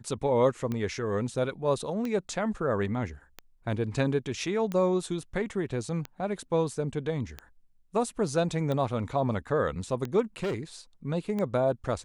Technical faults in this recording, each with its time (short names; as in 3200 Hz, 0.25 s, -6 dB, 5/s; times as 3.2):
tick 45 rpm -20 dBFS
10.43–10.55 clipped -26.5 dBFS